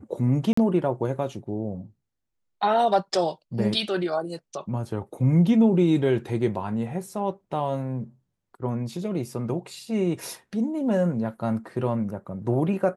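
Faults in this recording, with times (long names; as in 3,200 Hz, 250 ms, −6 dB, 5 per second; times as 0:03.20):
0:00.53–0:00.57: drop-out 44 ms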